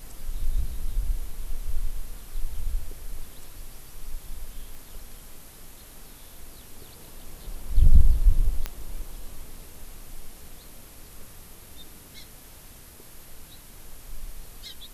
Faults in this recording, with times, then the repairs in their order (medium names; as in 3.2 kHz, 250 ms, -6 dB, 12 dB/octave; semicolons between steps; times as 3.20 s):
4.75 s: pop
8.66 s: pop -13 dBFS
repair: de-click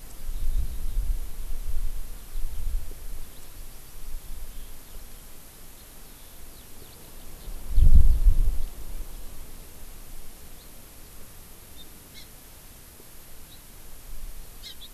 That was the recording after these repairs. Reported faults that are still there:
nothing left